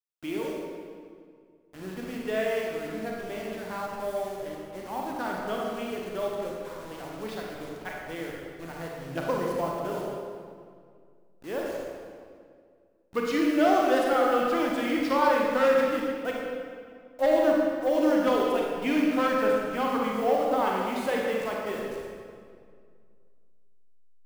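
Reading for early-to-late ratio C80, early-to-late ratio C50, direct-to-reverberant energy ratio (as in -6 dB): 1.0 dB, -1.0 dB, -2.5 dB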